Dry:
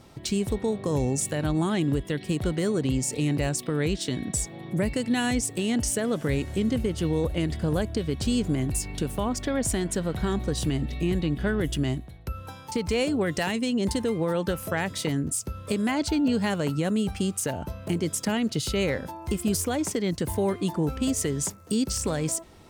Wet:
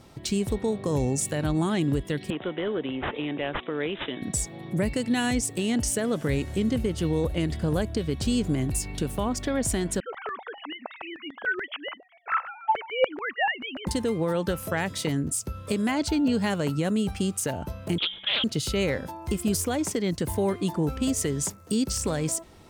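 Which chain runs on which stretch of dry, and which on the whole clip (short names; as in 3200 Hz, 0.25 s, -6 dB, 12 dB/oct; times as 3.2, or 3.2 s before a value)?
2.3–4.22 HPF 320 Hz + careless resampling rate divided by 6×, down none, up filtered
10–13.87 sine-wave speech + LFO high-pass saw down 6.9 Hz 600–1600 Hz
17.98–18.44 notches 50/100/150/200/250/300/350/400 Hz + inverted band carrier 3500 Hz + Doppler distortion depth 0.24 ms
whole clip: dry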